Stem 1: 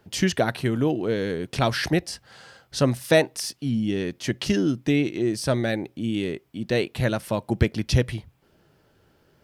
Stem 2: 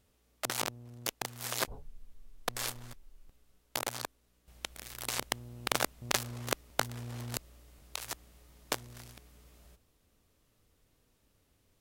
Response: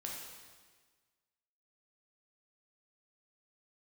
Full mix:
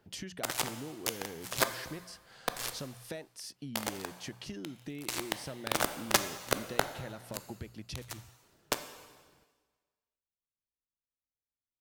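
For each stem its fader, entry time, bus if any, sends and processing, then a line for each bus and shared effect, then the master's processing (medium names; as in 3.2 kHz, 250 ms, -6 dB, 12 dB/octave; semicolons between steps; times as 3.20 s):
-8.0 dB, 0.00 s, no send, hum notches 60/120/180 Hz; compression 8:1, threshold -32 dBFS, peak gain reduction 19 dB
-5.0 dB, 0.00 s, send -3.5 dB, waveshaping leveller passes 3; upward expansion 2.5:1, over -37 dBFS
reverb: on, RT60 1.5 s, pre-delay 6 ms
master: none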